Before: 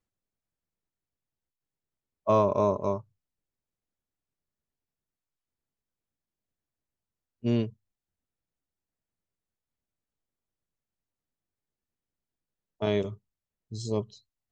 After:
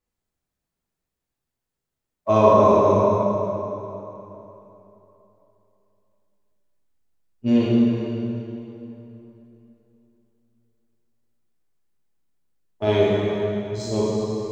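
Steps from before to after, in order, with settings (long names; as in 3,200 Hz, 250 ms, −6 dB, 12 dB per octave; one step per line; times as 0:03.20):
in parallel at −7.5 dB: slack as between gear wheels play −40.5 dBFS
on the sum: dense smooth reverb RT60 3.3 s, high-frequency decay 0.75×, DRR −8 dB
level −1 dB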